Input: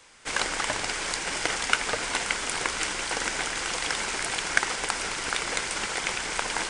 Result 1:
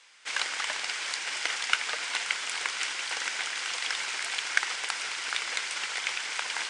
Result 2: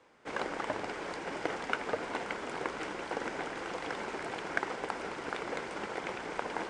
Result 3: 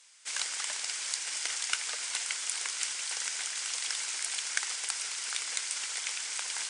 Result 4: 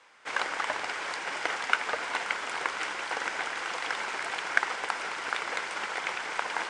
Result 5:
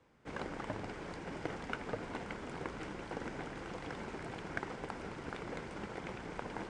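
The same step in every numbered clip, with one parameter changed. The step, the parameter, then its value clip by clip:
band-pass, frequency: 3100, 370, 7900, 1100, 150 Hz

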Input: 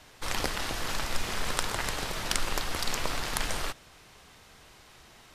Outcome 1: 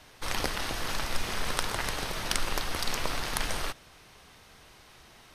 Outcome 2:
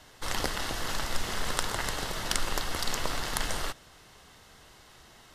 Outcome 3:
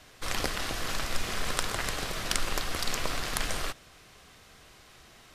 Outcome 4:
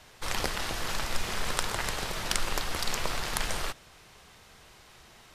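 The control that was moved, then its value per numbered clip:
notch, frequency: 7300, 2400, 890, 280 Hz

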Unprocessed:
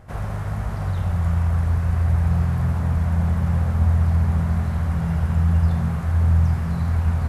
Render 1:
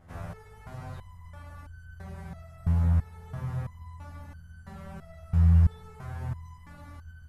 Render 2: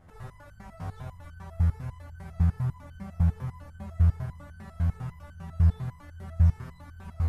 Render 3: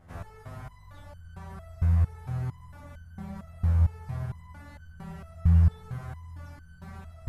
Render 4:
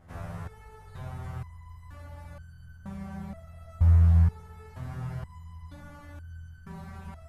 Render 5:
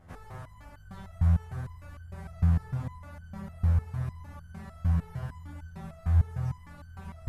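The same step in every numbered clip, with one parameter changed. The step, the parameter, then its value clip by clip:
stepped resonator, rate: 3, 10, 4.4, 2.1, 6.6 Hz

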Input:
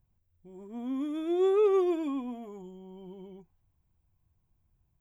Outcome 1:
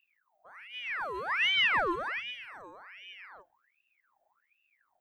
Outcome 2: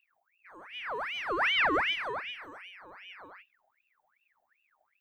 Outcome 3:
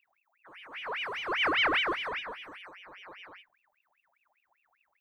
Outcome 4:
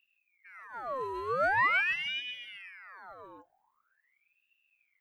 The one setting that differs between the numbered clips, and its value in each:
ring modulator with a swept carrier, at: 1.3, 2.6, 5, 0.44 Hz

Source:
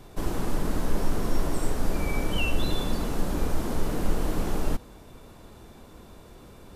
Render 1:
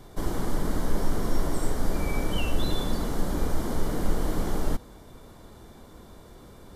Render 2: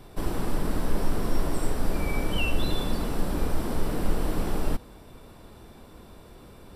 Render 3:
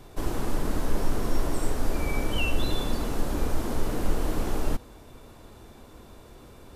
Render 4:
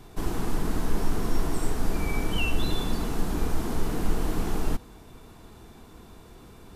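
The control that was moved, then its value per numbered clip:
notch, frequency: 2600, 6600, 180, 560 Hz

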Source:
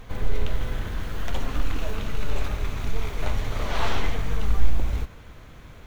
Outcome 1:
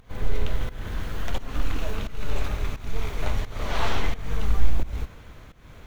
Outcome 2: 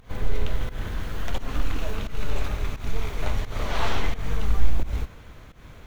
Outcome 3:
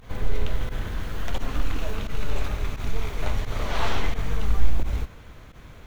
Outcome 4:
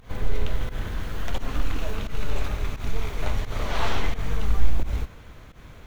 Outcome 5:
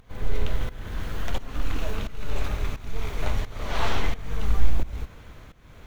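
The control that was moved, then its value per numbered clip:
pump, release: 320, 171, 64, 112, 476 ms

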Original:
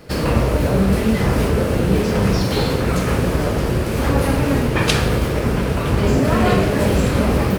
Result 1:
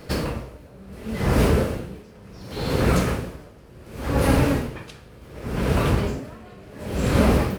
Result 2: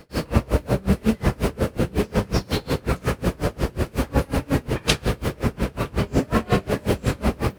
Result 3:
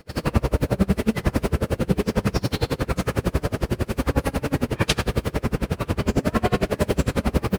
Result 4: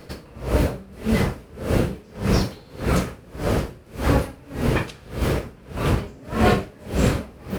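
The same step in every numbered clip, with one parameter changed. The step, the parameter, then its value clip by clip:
dB-linear tremolo, rate: 0.69, 5.5, 11, 1.7 Hz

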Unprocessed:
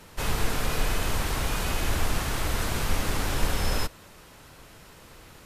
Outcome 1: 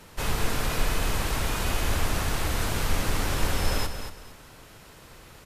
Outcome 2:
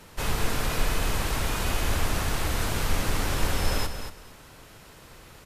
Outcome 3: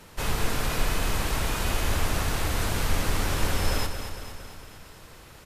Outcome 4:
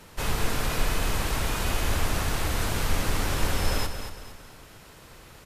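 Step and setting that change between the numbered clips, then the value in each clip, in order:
feedback echo, feedback: 25, 17, 59, 39%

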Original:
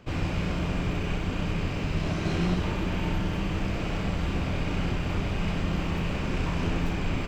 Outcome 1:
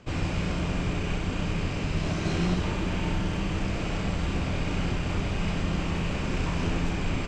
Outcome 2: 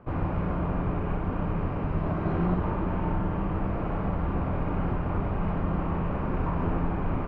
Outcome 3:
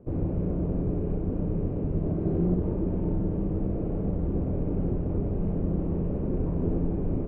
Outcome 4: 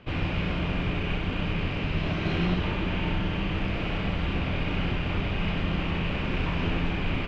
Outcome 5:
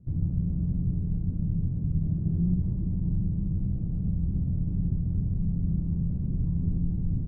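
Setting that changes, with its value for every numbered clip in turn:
synth low-pass, frequency: 7900, 1100, 440, 3100, 150 Hz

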